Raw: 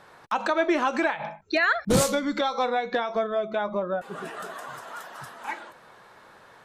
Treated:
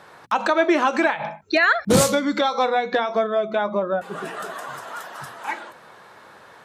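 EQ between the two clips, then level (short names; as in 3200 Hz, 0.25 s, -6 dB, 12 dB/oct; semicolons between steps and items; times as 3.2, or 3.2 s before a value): HPF 67 Hz; notches 60/120/180/240 Hz; +5.0 dB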